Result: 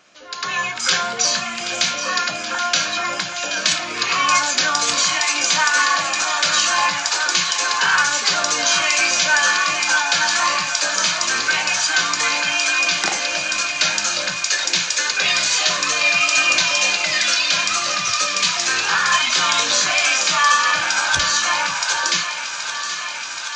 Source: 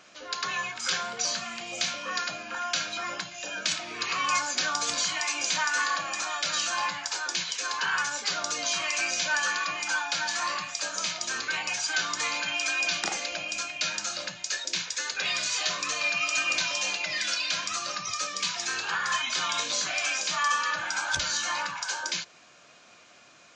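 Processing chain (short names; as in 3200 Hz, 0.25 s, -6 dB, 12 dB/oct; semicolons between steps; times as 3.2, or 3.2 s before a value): AGC gain up to 11.5 dB; thinning echo 0.776 s, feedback 83%, high-pass 490 Hz, level -10.5 dB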